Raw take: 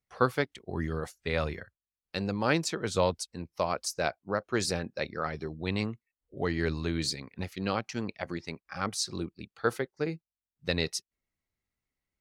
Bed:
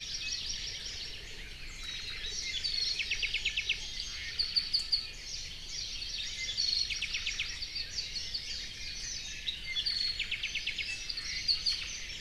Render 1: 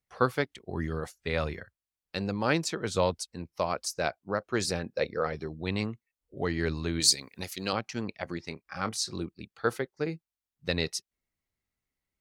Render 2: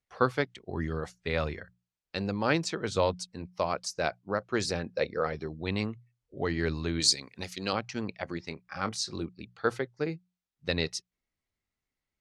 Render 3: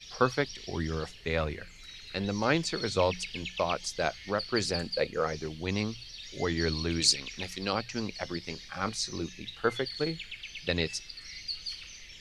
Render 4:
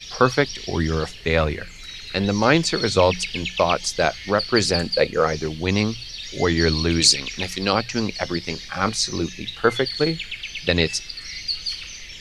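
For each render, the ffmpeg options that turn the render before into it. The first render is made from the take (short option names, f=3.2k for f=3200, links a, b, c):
-filter_complex "[0:a]asettb=1/sr,asplit=3[a][b][c];[a]atrim=end=4.934[d];[b]atrim=start=4.93:end=5.33,asetpts=PTS-STARTPTS,afade=t=in:d=0.004:c=qsin,afade=t=out:st=0.396:d=0.004:c=qsin,equalizer=f=480:t=o:w=0.27:g=12[e];[c]atrim=start=5.326[f];[d][e]acrossfade=d=0.004:c1=hsin:c2=qsin[g];[g][f]acrossfade=d=0.004:c1=qsin:c2=hsin,asettb=1/sr,asplit=3[h][i][j];[h]atrim=end=7.004[k];[i]atrim=start=7:end=7.73,asetpts=PTS-STARTPTS,afade=t=in:d=0.004:c=qsin,afade=t=out:st=0.726:d=0.004:c=qsin,bass=f=250:g=-6,treble=f=4k:g=15[l];[j]atrim=start=7.726[m];[k][l]acrossfade=d=0.004:c1=hsin:c2=qsin[n];[n][m]acrossfade=d=0.004:c1=qsin:c2=hsin,asettb=1/sr,asplit=3[o][p][q];[o]atrim=end=8.444[r];[p]atrim=start=8.44:end=9.15,asetpts=PTS-STARTPTS,afade=t=in:d=0.004:c=qsin,afade=t=out:st=0.706:d=0.004:c=qsin,asplit=2[s][t];[t]adelay=27,volume=-12dB[u];[s][u]amix=inputs=2:normalize=0,atrim=end_sample=31311[v];[q]atrim=start=9.146[w];[r][v]acrossfade=d=0.004:c1=hsin:c2=qsin[x];[x][w]acrossfade=d=0.004:c1=qsin:c2=hsin"
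-af "lowpass=7k,bandreject=f=60:t=h:w=6,bandreject=f=120:t=h:w=6,bandreject=f=180:t=h:w=6"
-filter_complex "[1:a]volume=-7dB[a];[0:a][a]amix=inputs=2:normalize=0"
-af "volume=10.5dB,alimiter=limit=-3dB:level=0:latency=1"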